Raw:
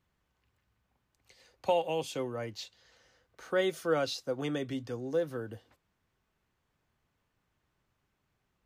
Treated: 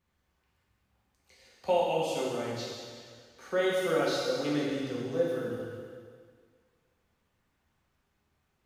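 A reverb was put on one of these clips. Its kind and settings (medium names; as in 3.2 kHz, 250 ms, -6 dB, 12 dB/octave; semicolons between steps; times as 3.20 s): plate-style reverb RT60 1.9 s, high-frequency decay 1×, DRR -5.5 dB; trim -3.5 dB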